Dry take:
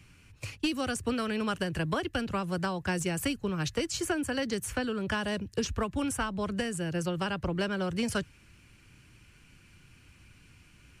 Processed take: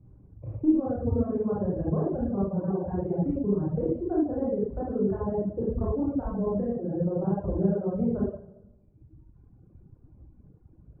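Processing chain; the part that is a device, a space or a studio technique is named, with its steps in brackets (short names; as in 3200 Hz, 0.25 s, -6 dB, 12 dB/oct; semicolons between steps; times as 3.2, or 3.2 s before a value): next room (LPF 670 Hz 24 dB/oct; reverb RT60 1.1 s, pre-delay 24 ms, DRR -8 dB); reverb removal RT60 1.5 s; 1.02–1.66 bell 86 Hz +14.5 dB 0.81 oct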